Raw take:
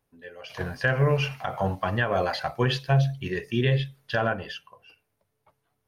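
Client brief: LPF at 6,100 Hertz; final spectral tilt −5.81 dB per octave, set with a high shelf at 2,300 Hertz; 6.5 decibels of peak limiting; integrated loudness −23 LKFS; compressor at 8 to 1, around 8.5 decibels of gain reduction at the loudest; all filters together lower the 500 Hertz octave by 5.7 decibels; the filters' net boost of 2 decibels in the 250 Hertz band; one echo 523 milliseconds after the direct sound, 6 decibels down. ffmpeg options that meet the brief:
ffmpeg -i in.wav -af "lowpass=6100,equalizer=frequency=250:width_type=o:gain=5.5,equalizer=frequency=500:width_type=o:gain=-8.5,highshelf=frequency=2300:gain=-8.5,acompressor=threshold=-26dB:ratio=8,alimiter=limit=-23dB:level=0:latency=1,aecho=1:1:523:0.501,volume=10.5dB" out.wav

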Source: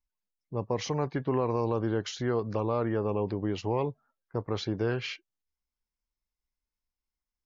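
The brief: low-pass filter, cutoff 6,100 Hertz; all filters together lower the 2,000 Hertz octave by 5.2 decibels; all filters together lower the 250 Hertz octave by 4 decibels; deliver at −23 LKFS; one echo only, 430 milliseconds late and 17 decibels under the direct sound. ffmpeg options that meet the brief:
ffmpeg -i in.wav -af "lowpass=6100,equalizer=frequency=250:width_type=o:gain=-5.5,equalizer=frequency=2000:width_type=o:gain=-7,aecho=1:1:430:0.141,volume=10dB" out.wav

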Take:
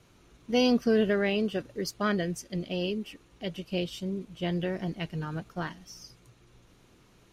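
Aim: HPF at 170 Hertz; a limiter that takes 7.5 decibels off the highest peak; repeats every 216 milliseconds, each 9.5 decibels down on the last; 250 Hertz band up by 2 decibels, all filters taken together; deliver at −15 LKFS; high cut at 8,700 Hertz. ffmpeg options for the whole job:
ffmpeg -i in.wav -af "highpass=170,lowpass=8700,equalizer=frequency=250:width_type=o:gain=4,alimiter=limit=-20dB:level=0:latency=1,aecho=1:1:216|432|648|864:0.335|0.111|0.0365|0.012,volume=17dB" out.wav

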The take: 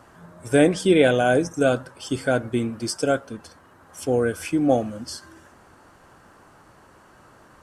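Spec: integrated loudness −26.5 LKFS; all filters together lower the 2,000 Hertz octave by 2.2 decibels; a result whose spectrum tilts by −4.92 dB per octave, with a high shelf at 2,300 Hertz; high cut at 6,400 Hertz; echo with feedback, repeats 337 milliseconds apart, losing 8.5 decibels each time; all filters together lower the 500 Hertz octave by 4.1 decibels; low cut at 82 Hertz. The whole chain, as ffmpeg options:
ffmpeg -i in.wav -af "highpass=82,lowpass=6400,equalizer=frequency=500:width_type=o:gain=-5,equalizer=frequency=2000:width_type=o:gain=-6,highshelf=frequency=2300:gain=6,aecho=1:1:337|674|1011|1348:0.376|0.143|0.0543|0.0206,volume=-2dB" out.wav

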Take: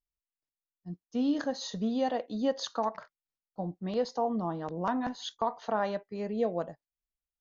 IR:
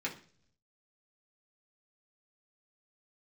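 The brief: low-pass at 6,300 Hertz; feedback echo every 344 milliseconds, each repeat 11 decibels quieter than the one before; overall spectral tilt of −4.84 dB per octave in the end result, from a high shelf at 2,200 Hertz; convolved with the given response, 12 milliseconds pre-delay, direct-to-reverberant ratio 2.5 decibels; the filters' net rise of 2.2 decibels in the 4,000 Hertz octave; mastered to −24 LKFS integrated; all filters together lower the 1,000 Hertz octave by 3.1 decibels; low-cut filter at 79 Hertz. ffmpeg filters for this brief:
-filter_complex "[0:a]highpass=79,lowpass=6300,equalizer=frequency=1000:width_type=o:gain=-3.5,highshelf=frequency=2200:gain=-6,equalizer=frequency=4000:width_type=o:gain=8.5,aecho=1:1:344|688|1032:0.282|0.0789|0.0221,asplit=2[link_01][link_02];[1:a]atrim=start_sample=2205,adelay=12[link_03];[link_02][link_03]afir=irnorm=-1:irlink=0,volume=-6dB[link_04];[link_01][link_04]amix=inputs=2:normalize=0,volume=7dB"

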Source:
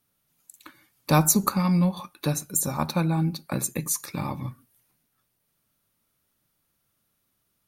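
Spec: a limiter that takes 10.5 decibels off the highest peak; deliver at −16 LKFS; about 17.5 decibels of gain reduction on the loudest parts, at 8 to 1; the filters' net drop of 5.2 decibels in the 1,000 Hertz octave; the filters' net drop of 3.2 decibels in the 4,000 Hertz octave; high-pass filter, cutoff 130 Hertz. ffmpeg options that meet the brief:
ffmpeg -i in.wav -af "highpass=130,equalizer=frequency=1000:width_type=o:gain=-6.5,equalizer=frequency=4000:width_type=o:gain=-3.5,acompressor=threshold=-35dB:ratio=8,volume=26dB,alimiter=limit=-5dB:level=0:latency=1" out.wav

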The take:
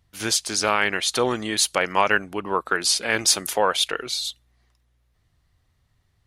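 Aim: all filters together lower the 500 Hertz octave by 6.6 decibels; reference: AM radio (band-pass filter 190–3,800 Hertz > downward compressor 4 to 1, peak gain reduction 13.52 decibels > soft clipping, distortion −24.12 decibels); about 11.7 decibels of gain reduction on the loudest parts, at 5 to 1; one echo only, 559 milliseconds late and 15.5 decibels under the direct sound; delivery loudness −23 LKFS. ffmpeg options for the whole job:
ffmpeg -i in.wav -af "equalizer=frequency=500:width_type=o:gain=-8,acompressor=threshold=-28dB:ratio=5,highpass=190,lowpass=3800,aecho=1:1:559:0.168,acompressor=threshold=-41dB:ratio=4,asoftclip=threshold=-26.5dB,volume=21dB" out.wav

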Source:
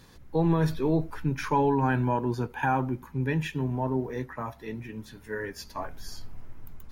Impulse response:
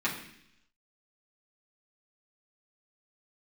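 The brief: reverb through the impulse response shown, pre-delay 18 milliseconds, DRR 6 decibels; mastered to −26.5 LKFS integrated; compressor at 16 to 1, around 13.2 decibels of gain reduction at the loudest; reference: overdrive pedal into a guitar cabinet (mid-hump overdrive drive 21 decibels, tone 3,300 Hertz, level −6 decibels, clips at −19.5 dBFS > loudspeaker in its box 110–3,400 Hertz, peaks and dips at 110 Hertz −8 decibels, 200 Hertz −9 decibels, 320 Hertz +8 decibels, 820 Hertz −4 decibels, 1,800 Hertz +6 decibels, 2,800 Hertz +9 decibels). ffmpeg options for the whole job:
-filter_complex "[0:a]acompressor=threshold=-33dB:ratio=16,asplit=2[link_01][link_02];[1:a]atrim=start_sample=2205,adelay=18[link_03];[link_02][link_03]afir=irnorm=-1:irlink=0,volume=-15dB[link_04];[link_01][link_04]amix=inputs=2:normalize=0,asplit=2[link_05][link_06];[link_06]highpass=frequency=720:poles=1,volume=21dB,asoftclip=type=tanh:threshold=-19.5dB[link_07];[link_05][link_07]amix=inputs=2:normalize=0,lowpass=frequency=3300:poles=1,volume=-6dB,highpass=110,equalizer=frequency=110:width_type=q:width=4:gain=-8,equalizer=frequency=200:width_type=q:width=4:gain=-9,equalizer=frequency=320:width_type=q:width=4:gain=8,equalizer=frequency=820:width_type=q:width=4:gain=-4,equalizer=frequency=1800:width_type=q:width=4:gain=6,equalizer=frequency=2800:width_type=q:width=4:gain=9,lowpass=frequency=3400:width=0.5412,lowpass=frequency=3400:width=1.3066,volume=3dB"

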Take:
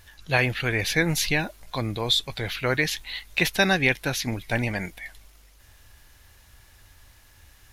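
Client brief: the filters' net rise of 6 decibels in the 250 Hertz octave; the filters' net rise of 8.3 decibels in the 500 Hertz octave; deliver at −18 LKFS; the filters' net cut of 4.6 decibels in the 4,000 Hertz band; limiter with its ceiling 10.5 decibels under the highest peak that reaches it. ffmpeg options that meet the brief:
ffmpeg -i in.wav -af "equalizer=frequency=250:width_type=o:gain=5.5,equalizer=frequency=500:width_type=o:gain=8.5,equalizer=frequency=4000:width_type=o:gain=-5.5,volume=8.5dB,alimiter=limit=-6dB:level=0:latency=1" out.wav

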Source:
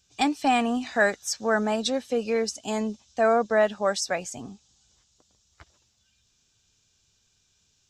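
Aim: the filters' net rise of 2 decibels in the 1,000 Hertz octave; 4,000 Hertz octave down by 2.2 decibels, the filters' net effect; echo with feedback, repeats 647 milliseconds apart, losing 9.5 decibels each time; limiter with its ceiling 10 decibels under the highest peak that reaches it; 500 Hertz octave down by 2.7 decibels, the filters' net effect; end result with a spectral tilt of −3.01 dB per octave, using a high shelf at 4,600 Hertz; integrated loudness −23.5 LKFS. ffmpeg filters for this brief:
ffmpeg -i in.wav -af "equalizer=frequency=500:width_type=o:gain=-6.5,equalizer=frequency=1000:width_type=o:gain=6.5,equalizer=frequency=4000:width_type=o:gain=-5,highshelf=frequency=4600:gain=3,alimiter=limit=-19dB:level=0:latency=1,aecho=1:1:647|1294|1941|2588:0.335|0.111|0.0365|0.012,volume=6dB" out.wav

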